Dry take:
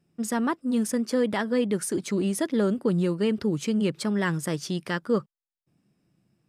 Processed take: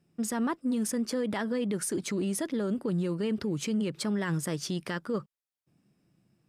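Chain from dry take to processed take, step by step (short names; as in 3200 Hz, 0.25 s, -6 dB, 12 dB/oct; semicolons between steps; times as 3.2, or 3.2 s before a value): limiter -23 dBFS, peak gain reduction 9.5 dB; added harmonics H 8 -44 dB, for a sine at -23 dBFS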